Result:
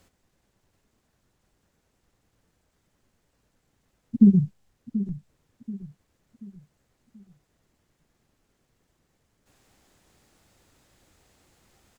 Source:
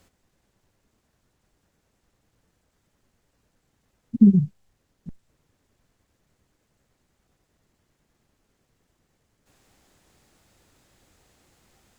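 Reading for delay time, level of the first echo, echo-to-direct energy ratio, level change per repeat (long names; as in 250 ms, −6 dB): 733 ms, −13.0 dB, −12.0 dB, −8.0 dB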